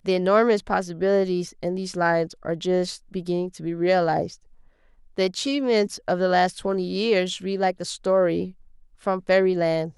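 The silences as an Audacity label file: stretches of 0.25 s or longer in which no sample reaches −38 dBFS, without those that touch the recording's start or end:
4.350000	5.170000	silence
8.510000	9.040000	silence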